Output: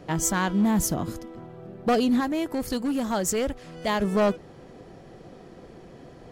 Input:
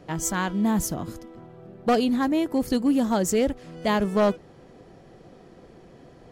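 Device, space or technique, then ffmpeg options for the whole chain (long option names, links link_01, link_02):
limiter into clipper: -filter_complex "[0:a]alimiter=limit=-17.5dB:level=0:latency=1:release=99,asoftclip=type=hard:threshold=-19.5dB,asettb=1/sr,asplit=3[link_01][link_02][link_03];[link_01]atrim=end=2.204[link_04];[link_02]atrim=start=2.2:end=4.02,asetpts=PTS-STARTPTS,afade=type=in:duration=0.004:curve=qsin,afade=type=out:start_time=1.816:duration=0.004:curve=qsin,equalizer=frequency=240:width=0.57:gain=-5.5[link_05];[link_03]atrim=start=4.016[link_06];[link_04][link_05]acrossfade=duration=0.004:curve1=hsin:curve2=qsin[link_07];[link_07][link_06]acrossfade=duration=0.004:curve1=qsin:curve2=hsin,volume=3dB"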